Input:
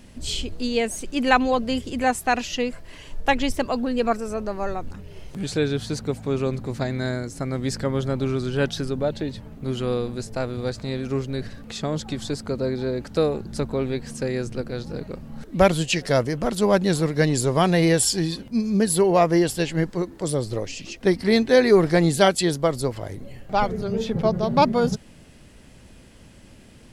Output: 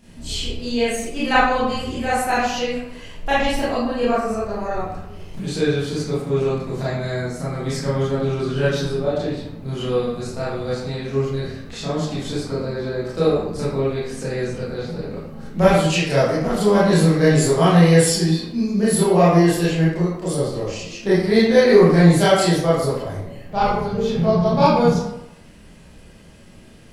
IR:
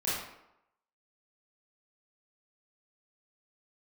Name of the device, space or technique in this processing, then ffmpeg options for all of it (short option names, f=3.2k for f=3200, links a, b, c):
bathroom: -filter_complex "[0:a]asettb=1/sr,asplit=3[a][b][c];[a]atrim=end=16.854[d];[b]atrim=start=16.85:end=17.51,asetpts=PTS-STARTPTS,afade=t=in:d=0.004:c=qsin,afade=t=out:st=0.656:d=0.004:c=qsin,asplit=2[e][f];[f]adelay=19,volume=-4dB[g];[e][g]amix=inputs=2:normalize=0,atrim=end_sample=29106[h];[c]atrim=start=17.506[i];[d][h]acrossfade=d=0.004:c1=hsin:c2=qsin[j];[j][i]acrossfade=d=0.004:c1=qsin:c2=hsin[k];[1:a]atrim=start_sample=2205[l];[k][l]afir=irnorm=-1:irlink=0,volume=-4dB"